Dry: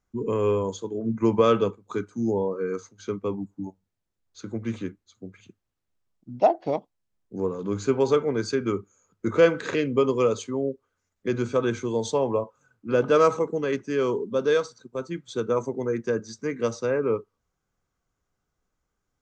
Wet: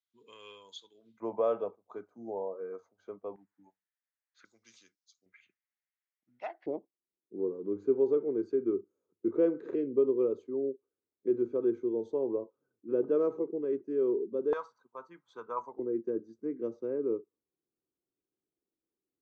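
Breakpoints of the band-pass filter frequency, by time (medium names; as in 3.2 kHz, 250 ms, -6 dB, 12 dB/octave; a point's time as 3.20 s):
band-pass filter, Q 4.4
3.6 kHz
from 1.20 s 670 Hz
from 3.36 s 1.8 kHz
from 4.45 s 5.3 kHz
from 5.26 s 2 kHz
from 6.66 s 360 Hz
from 14.53 s 1 kHz
from 15.79 s 340 Hz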